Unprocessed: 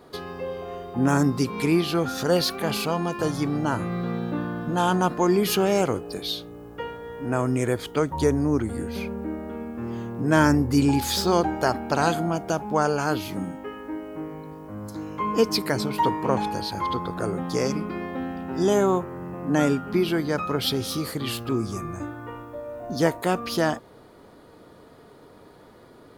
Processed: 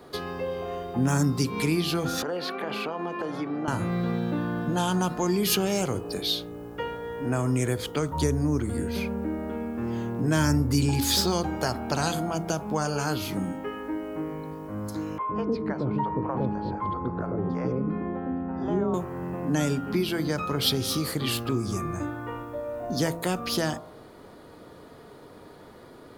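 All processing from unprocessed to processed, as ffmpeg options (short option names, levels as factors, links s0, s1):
-filter_complex "[0:a]asettb=1/sr,asplit=3[s0][s1][s2];[s0]atrim=end=2.224[s3];[s1]atrim=start=2.22:end=3.68,asetpts=PTS-STARTPTS,afade=t=in:d=0.004:c=qsin,afade=t=out:st=1.456:d=0.004:c=qsin,highpass=62,acrossover=split=220 3100:gain=0.126 1 0.1[s4][s5][s6];[s4][s5][s6]amix=inputs=3:normalize=0,acompressor=threshold=0.0398:ratio=4:attack=3.2:release=140:knee=1:detection=peak[s7];[s2]atrim=start=3.676[s8];[s3][s7]acrossfade=d=0.004:c1=hsin:c2=qsin[s9];[s9][s8]acrossfade=d=0.004:c1=qsin:c2=hsin,asettb=1/sr,asplit=3[s10][s11][s12];[s10]atrim=end=15.184[s13];[s11]atrim=start=15.18:end=18.94,asetpts=PTS-STARTPTS,afade=t=in:d=0.004:c=qsin,afade=t=out:st=3.756:d=0.004:c=qsin,lowpass=1100,acrossover=split=570[s14][s15];[s14]adelay=110[s16];[s16][s15]amix=inputs=2:normalize=0,atrim=end_sample=165816[s17];[s12]atrim=start=18.936[s18];[s13][s17]acrossfade=d=0.004:c1=hsin:c2=qsin[s19];[s19][s18]acrossfade=d=0.004:c1=qsin:c2=hsin,bandreject=f=55.88:t=h:w=4,bandreject=f=111.76:t=h:w=4,bandreject=f=167.64:t=h:w=4,bandreject=f=223.52:t=h:w=4,bandreject=f=279.4:t=h:w=4,bandreject=f=335.28:t=h:w=4,bandreject=f=391.16:t=h:w=4,bandreject=f=447.04:t=h:w=4,bandreject=f=502.92:t=h:w=4,bandreject=f=558.8:t=h:w=4,bandreject=f=614.68:t=h:w=4,bandreject=f=670.56:t=h:w=4,bandreject=f=726.44:t=h:w=4,bandreject=f=782.32:t=h:w=4,bandreject=f=838.2:t=h:w=4,bandreject=f=894.08:t=h:w=4,bandreject=f=949.96:t=h:w=4,bandreject=f=1005.84:t=h:w=4,bandreject=f=1061.72:t=h:w=4,bandreject=f=1117.6:t=h:w=4,bandreject=f=1173.48:t=h:w=4,bandreject=f=1229.36:t=h:w=4,bandreject=f=1285.24:t=h:w=4,bandreject=f=1341.12:t=h:w=4,bandreject=f=1397:t=h:w=4,bandreject=f=1452.88:t=h:w=4,acrossover=split=170|3000[s20][s21][s22];[s21]acompressor=threshold=0.0316:ratio=3[s23];[s20][s23][s22]amix=inputs=3:normalize=0,volume=1.33"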